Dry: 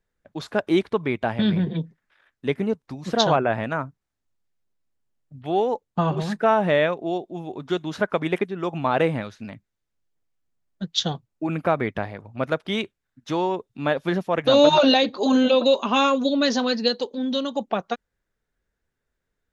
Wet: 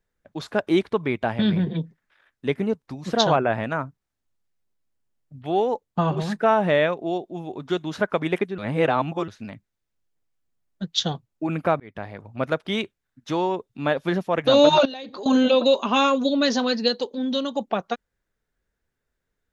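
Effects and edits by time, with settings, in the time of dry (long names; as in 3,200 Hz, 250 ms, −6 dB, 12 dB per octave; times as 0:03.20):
0:08.58–0:09.28: reverse
0:11.80–0:12.22: fade in
0:14.85–0:15.26: downward compressor 12 to 1, threshold −31 dBFS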